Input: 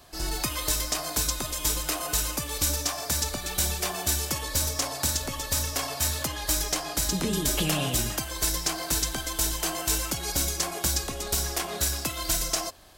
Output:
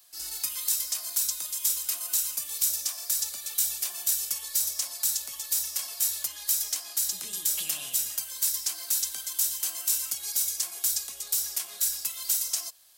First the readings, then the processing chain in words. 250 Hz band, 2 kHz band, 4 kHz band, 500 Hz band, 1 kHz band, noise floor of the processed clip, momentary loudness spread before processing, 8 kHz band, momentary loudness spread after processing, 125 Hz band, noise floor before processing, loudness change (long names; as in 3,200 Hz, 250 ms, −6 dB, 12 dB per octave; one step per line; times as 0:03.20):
below −25 dB, −11.0 dB, −4.5 dB, −21.5 dB, −17.0 dB, −43 dBFS, 3 LU, +0.5 dB, 4 LU, below −25 dB, −37 dBFS, 0.0 dB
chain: first-order pre-emphasis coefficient 0.97